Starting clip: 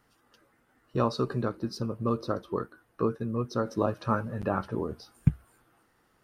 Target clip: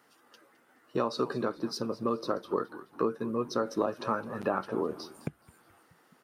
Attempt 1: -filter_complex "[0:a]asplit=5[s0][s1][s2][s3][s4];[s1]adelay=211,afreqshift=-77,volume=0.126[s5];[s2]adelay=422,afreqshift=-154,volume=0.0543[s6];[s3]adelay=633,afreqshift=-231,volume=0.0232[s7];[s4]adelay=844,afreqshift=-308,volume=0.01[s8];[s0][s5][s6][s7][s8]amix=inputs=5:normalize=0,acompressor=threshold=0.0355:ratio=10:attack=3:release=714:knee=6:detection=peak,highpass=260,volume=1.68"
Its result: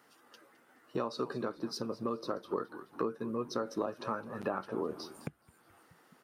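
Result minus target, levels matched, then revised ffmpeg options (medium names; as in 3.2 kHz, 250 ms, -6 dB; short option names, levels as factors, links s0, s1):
compression: peak gain reduction +6 dB
-filter_complex "[0:a]asplit=5[s0][s1][s2][s3][s4];[s1]adelay=211,afreqshift=-77,volume=0.126[s5];[s2]adelay=422,afreqshift=-154,volume=0.0543[s6];[s3]adelay=633,afreqshift=-231,volume=0.0232[s7];[s4]adelay=844,afreqshift=-308,volume=0.01[s8];[s0][s5][s6][s7][s8]amix=inputs=5:normalize=0,acompressor=threshold=0.075:ratio=10:attack=3:release=714:knee=6:detection=peak,highpass=260,volume=1.68"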